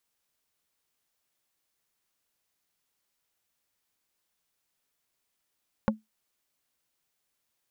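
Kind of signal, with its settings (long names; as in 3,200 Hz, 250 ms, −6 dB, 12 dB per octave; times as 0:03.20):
struck wood plate, lowest mode 217 Hz, decay 0.17 s, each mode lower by 2 dB, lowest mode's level −18 dB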